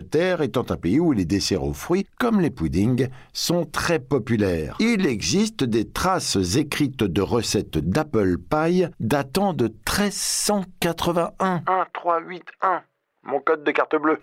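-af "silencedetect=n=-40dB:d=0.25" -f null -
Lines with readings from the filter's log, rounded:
silence_start: 12.82
silence_end: 13.26 | silence_duration: 0.44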